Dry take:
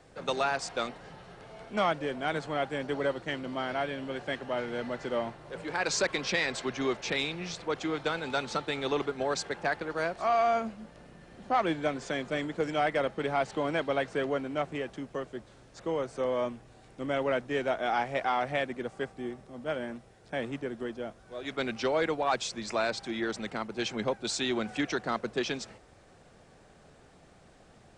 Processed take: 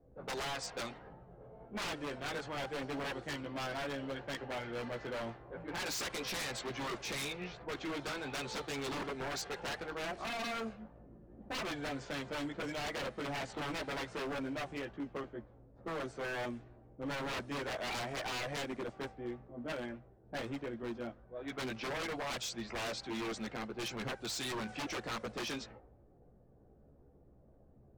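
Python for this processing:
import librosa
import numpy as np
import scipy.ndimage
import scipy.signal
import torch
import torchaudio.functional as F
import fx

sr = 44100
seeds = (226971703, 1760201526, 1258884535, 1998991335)

y = fx.chorus_voices(x, sr, voices=6, hz=0.23, base_ms=16, depth_ms=2.1, mix_pct=45)
y = fx.env_lowpass(y, sr, base_hz=390.0, full_db=-31.0)
y = 10.0 ** (-32.5 / 20.0) * (np.abs((y / 10.0 ** (-32.5 / 20.0) + 3.0) % 4.0 - 2.0) - 1.0)
y = F.gain(torch.from_numpy(y), -1.0).numpy()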